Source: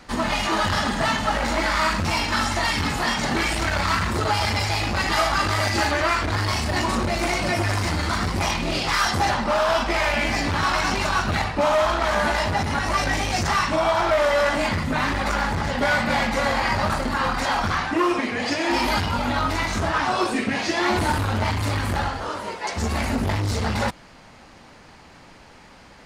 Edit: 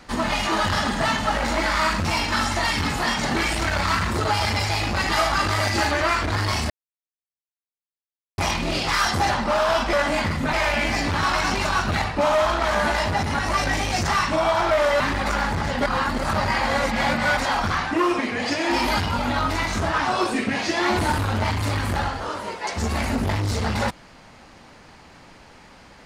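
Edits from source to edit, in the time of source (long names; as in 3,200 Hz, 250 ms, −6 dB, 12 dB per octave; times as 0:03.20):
0:06.70–0:08.38: silence
0:14.40–0:15.00: move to 0:09.93
0:15.86–0:17.37: reverse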